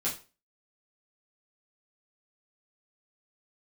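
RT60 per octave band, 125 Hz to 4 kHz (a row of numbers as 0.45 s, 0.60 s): 0.30 s, 0.35 s, 0.35 s, 0.35 s, 0.30 s, 0.30 s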